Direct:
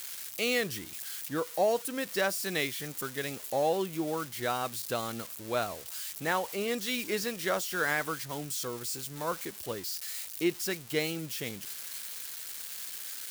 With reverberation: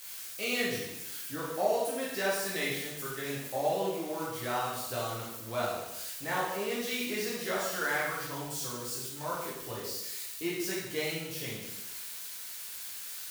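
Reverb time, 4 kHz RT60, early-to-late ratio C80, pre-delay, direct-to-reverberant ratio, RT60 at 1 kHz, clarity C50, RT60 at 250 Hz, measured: 0.90 s, 0.85 s, 4.0 dB, 5 ms, −6.5 dB, 0.90 s, 1.0 dB, 0.90 s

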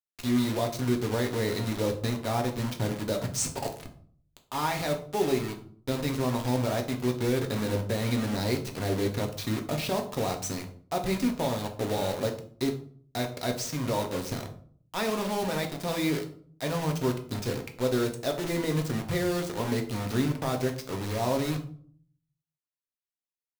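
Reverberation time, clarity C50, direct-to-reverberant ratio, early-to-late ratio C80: 0.50 s, 11.0 dB, 3.0 dB, 15.0 dB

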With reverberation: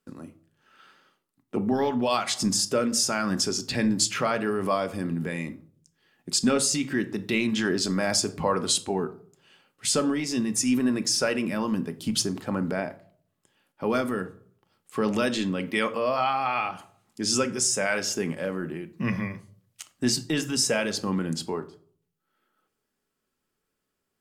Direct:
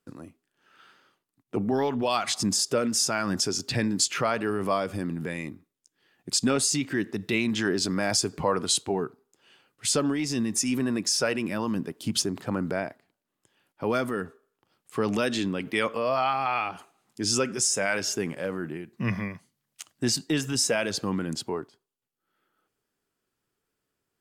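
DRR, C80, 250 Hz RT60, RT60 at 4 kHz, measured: 9.0 dB, 21.0 dB, 0.65 s, 0.30 s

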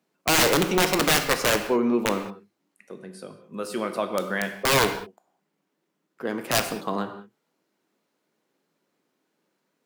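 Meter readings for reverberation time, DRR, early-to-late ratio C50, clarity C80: non-exponential decay, 7.0 dB, 9.0 dB, 10.5 dB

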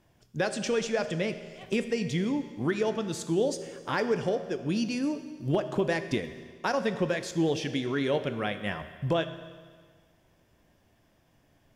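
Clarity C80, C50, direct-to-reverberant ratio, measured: 12.0 dB, 11.0 dB, 9.5 dB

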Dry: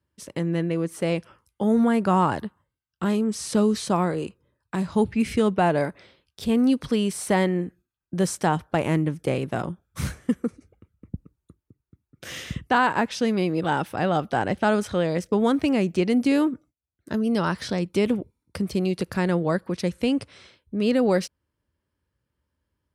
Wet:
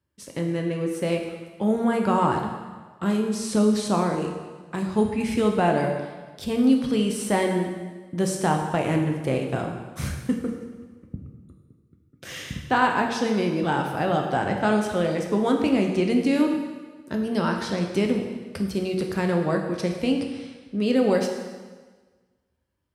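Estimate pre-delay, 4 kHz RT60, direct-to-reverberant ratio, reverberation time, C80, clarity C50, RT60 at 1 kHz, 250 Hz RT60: 4 ms, 1.3 s, 2.0 dB, 1.4 s, 6.5 dB, 5.0 dB, 1.4 s, 1.4 s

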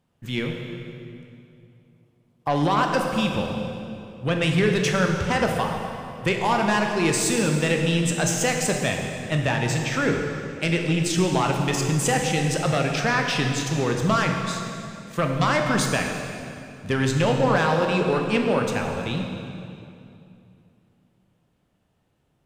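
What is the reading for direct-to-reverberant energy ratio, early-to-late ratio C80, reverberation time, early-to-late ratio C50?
2.0 dB, 4.5 dB, 2.7 s, 3.5 dB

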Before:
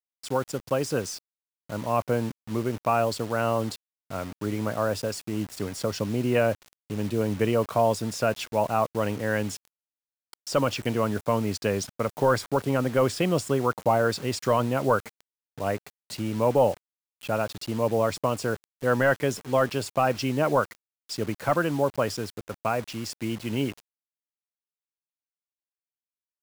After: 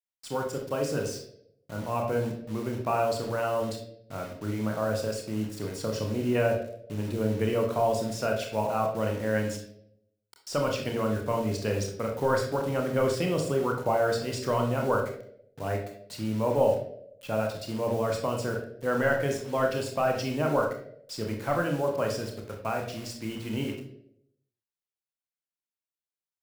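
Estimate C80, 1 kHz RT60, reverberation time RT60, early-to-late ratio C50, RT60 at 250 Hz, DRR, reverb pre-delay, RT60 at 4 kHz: 9.5 dB, 0.60 s, 0.75 s, 5.5 dB, 0.80 s, 1.5 dB, 27 ms, 0.50 s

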